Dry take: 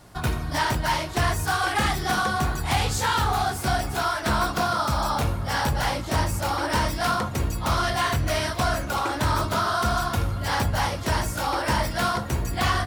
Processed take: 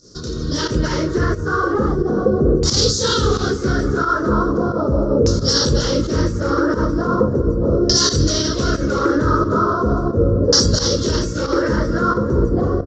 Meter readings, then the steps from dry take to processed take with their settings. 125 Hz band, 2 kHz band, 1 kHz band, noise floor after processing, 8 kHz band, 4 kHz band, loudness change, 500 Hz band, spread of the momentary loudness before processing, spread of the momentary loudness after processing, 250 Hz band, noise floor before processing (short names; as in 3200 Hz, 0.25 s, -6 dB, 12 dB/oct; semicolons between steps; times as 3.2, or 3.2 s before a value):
+6.5 dB, 0.0 dB, 0.0 dB, -24 dBFS, +9.0 dB, +8.5 dB, +7.0 dB, +12.0 dB, 3 LU, 6 LU, +13.0 dB, -33 dBFS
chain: EQ curve 110 Hz 0 dB, 490 Hz +12 dB, 760 Hz -21 dB, 1300 Hz -3 dB, 2400 Hz -21 dB, 5700 Hz +15 dB; limiter -16 dBFS, peak gain reduction 11.5 dB; AGC gain up to 12 dB; LFO low-pass saw down 0.38 Hz 490–5400 Hz; pump 89 bpm, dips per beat 1, -13 dB, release 89 ms; on a send: feedback echo 0.318 s, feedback 48%, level -18.5 dB; on the sum: downsampling 16000 Hz; gain -1.5 dB